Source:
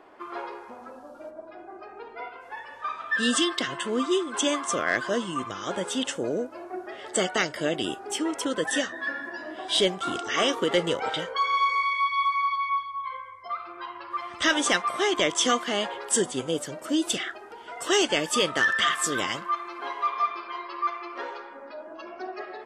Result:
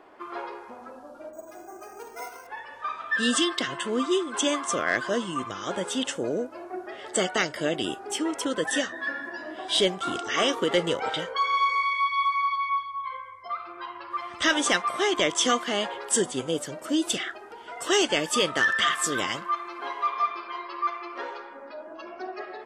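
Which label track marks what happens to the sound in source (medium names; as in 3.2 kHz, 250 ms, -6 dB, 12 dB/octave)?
1.330000	2.470000	careless resampling rate divided by 6×, down none, up hold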